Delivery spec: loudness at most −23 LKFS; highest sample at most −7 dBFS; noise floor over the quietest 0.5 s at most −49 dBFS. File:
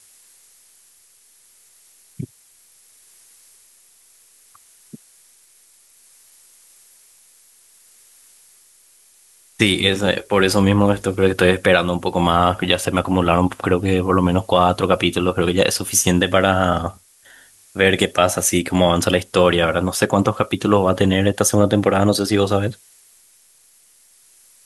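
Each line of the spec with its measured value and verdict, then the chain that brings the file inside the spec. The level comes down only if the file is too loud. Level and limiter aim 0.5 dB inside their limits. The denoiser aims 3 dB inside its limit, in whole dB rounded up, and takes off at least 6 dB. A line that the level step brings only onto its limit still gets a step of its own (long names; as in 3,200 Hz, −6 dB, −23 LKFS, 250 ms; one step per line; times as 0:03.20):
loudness −17.0 LKFS: out of spec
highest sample −1.5 dBFS: out of spec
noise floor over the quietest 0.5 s −54 dBFS: in spec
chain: level −6.5 dB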